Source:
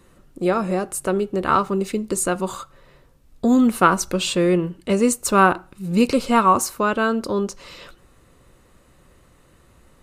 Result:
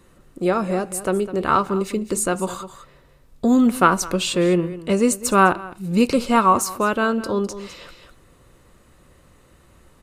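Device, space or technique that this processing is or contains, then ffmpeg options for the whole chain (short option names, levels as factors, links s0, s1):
ducked delay: -filter_complex "[0:a]asplit=3[s0][s1][s2];[s1]adelay=205,volume=0.531[s3];[s2]apad=whole_len=451354[s4];[s3][s4]sidechaincompress=threshold=0.0562:ratio=12:attack=33:release=1270[s5];[s0][s5]amix=inputs=2:normalize=0"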